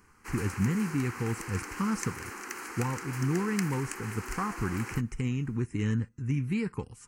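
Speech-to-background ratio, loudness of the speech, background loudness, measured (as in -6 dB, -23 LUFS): 7.0 dB, -32.5 LUFS, -39.5 LUFS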